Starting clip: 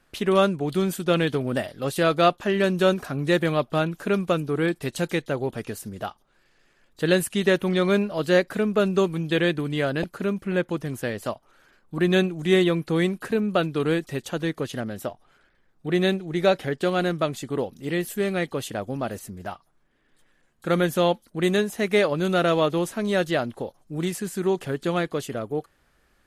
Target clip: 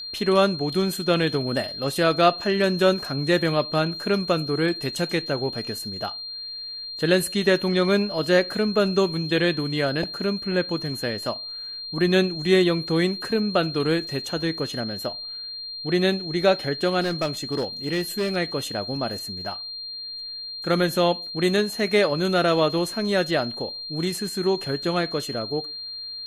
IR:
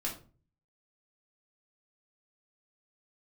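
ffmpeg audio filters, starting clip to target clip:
-filter_complex "[0:a]aeval=exprs='val(0)+0.0224*sin(2*PI*4200*n/s)':c=same,asettb=1/sr,asplit=3[a][b][c];[a]atrim=end=17.014[d];[b]atrim=start=17.01:end=18.36,asetpts=PTS-STARTPTS,afade=t=in:d=0.004:c=qsin,afade=t=out:st=1.346:d=0.004:c=qsin,volume=20.5dB,asoftclip=hard,volume=-20.5dB[e];[c]atrim=start=18.356[f];[d][e]acrossfade=d=0.004:c1=hsin:c2=qsin[g];[g][f]acrossfade=d=0.004:c1=qsin:c2=hsin,asplit=2[h][i];[1:a]atrim=start_sample=2205,afade=t=out:st=0.23:d=0.01,atrim=end_sample=10584,lowshelf=f=330:g=-11.5[j];[i][j]afir=irnorm=-1:irlink=0,volume=-16dB[k];[h][k]amix=inputs=2:normalize=0"

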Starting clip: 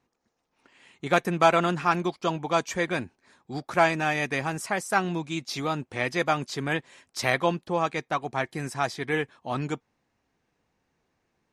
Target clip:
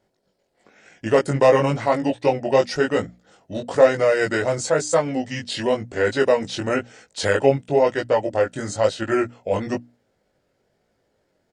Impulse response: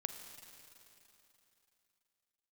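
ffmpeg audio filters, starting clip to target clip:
-filter_complex "[0:a]equalizer=f=630:t=o:w=0.67:g=10,equalizer=f=1.6k:t=o:w=0.67:g=8,equalizer=f=10k:t=o:w=0.67:g=7,asetrate=35002,aresample=44100,atempo=1.25992,flanger=delay=18:depth=3.8:speed=1,bandreject=f=60:t=h:w=6,bandreject=f=120:t=h:w=6,bandreject=f=180:t=h:w=6,bandreject=f=240:t=h:w=6,bandreject=f=300:t=h:w=6,asplit=2[a][b];[b]alimiter=limit=-13.5dB:level=0:latency=1:release=139,volume=0.5dB[c];[a][c]amix=inputs=2:normalize=0,equalizer=f=1.2k:w=3:g=-14.5,volume=1dB"

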